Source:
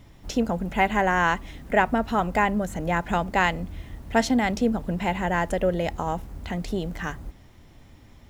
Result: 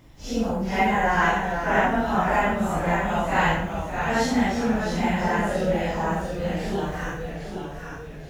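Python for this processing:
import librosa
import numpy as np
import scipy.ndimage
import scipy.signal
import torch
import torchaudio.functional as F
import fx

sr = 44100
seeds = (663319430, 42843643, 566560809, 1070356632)

y = fx.phase_scramble(x, sr, seeds[0], window_ms=200)
y = fx.echo_pitch(y, sr, ms=416, semitones=-1, count=3, db_per_echo=-6.0)
y = y + 10.0 ** (-12.5 / 20.0) * np.pad(y, (int(112 * sr / 1000.0), 0))[:len(y)]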